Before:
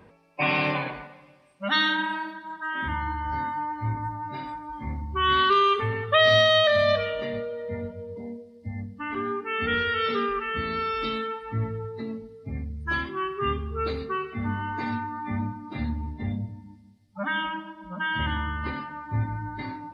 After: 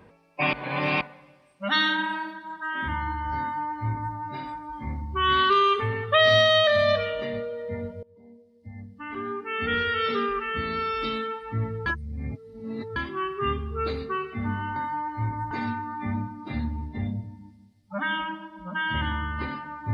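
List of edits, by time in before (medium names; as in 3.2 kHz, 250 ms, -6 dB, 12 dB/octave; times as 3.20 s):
0.53–1.01 s: reverse
3.40–4.15 s: copy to 14.76 s
8.03–9.83 s: fade in, from -22 dB
11.86–12.96 s: reverse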